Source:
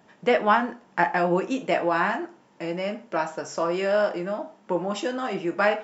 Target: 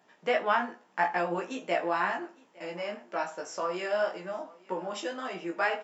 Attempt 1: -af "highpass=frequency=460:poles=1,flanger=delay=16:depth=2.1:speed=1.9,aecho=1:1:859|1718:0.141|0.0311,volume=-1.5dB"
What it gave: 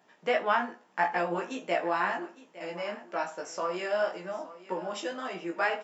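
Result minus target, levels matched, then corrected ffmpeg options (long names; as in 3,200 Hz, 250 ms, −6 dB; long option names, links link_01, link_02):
echo-to-direct +7 dB
-af "highpass=frequency=460:poles=1,flanger=delay=16:depth=2.1:speed=1.9,aecho=1:1:859|1718:0.0631|0.0139,volume=-1.5dB"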